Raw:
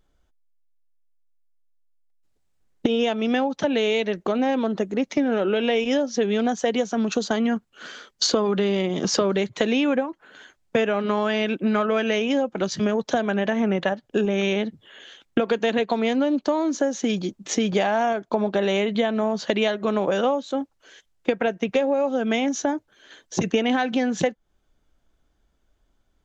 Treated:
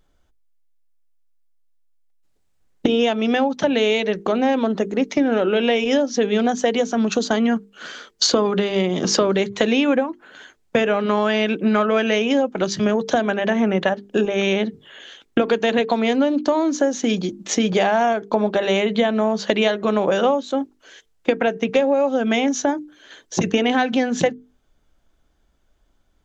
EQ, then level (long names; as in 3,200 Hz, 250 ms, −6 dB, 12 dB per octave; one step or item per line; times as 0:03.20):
mains-hum notches 50/100/150/200/250/300/350/400/450 Hz
+4.0 dB